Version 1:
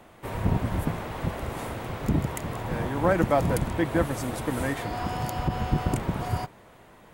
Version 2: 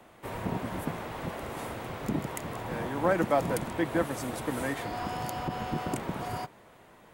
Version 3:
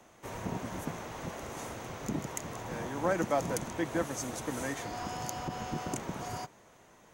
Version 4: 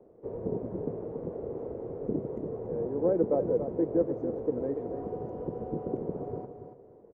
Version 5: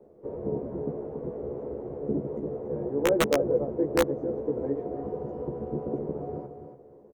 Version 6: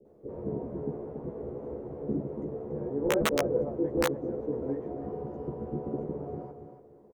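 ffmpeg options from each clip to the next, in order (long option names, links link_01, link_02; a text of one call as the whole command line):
ffmpeg -i in.wav -filter_complex "[0:a]lowshelf=frequency=110:gain=-6.5,acrossover=split=150|1500[link_01][link_02][link_03];[link_01]acompressor=threshold=-40dB:ratio=6[link_04];[link_04][link_02][link_03]amix=inputs=3:normalize=0,volume=-2.5dB" out.wav
ffmpeg -i in.wav -af "equalizer=frequency=6300:width=2.9:gain=14.5,volume=-4dB" out.wav
ffmpeg -i in.wav -af "lowpass=frequency=450:width_type=q:width=4.9,aecho=1:1:283|566|849:0.376|0.0864|0.0199,volume=-1dB" out.wav
ffmpeg -i in.wav -filter_complex "[0:a]aeval=exprs='(mod(6.31*val(0)+1,2)-1)/6.31':channel_layout=same,asplit=2[link_01][link_02];[link_02]adelay=14,volume=-2dB[link_03];[link_01][link_03]amix=inputs=2:normalize=0" out.wav
ffmpeg -i in.wav -filter_complex "[0:a]acrossover=split=520[link_01][link_02];[link_02]adelay=50[link_03];[link_01][link_03]amix=inputs=2:normalize=0,volume=-1dB" out.wav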